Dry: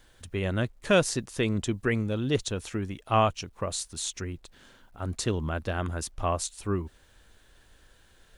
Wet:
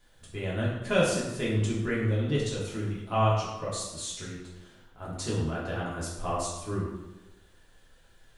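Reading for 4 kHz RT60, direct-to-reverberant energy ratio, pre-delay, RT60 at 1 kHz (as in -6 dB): 0.75 s, -7.0 dB, 3 ms, 0.95 s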